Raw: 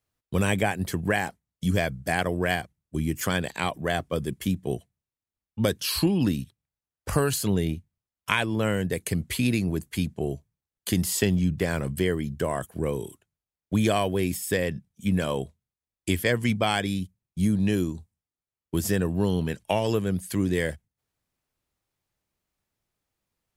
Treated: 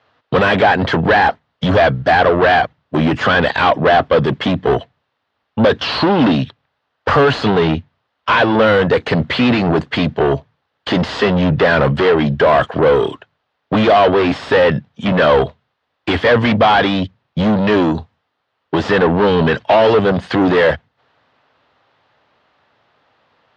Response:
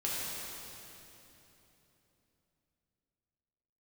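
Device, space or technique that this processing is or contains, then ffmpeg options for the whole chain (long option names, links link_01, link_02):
overdrive pedal into a guitar cabinet: -filter_complex "[0:a]asplit=2[link_01][link_02];[link_02]highpass=frequency=720:poles=1,volume=35dB,asoftclip=type=tanh:threshold=-6dB[link_03];[link_01][link_03]amix=inputs=2:normalize=0,lowpass=frequency=1500:poles=1,volume=-6dB,highpass=75,equalizer=frequency=190:width_type=q:width=4:gain=-8,equalizer=frequency=350:width_type=q:width=4:gain=-7,equalizer=frequency=2300:width_type=q:width=4:gain=-6,lowpass=frequency=4000:width=0.5412,lowpass=frequency=4000:width=1.3066,volume=5.5dB"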